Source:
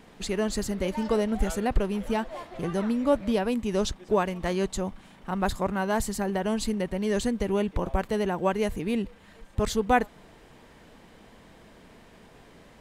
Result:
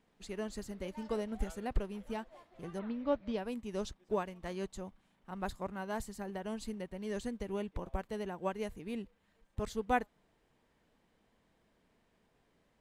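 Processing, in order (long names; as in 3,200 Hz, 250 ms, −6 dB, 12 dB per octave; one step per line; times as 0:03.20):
0:02.78–0:03.37: low-pass filter 3,600 Hz → 6,000 Hz 24 dB per octave
expander for the loud parts 1.5 to 1, over −42 dBFS
level −8 dB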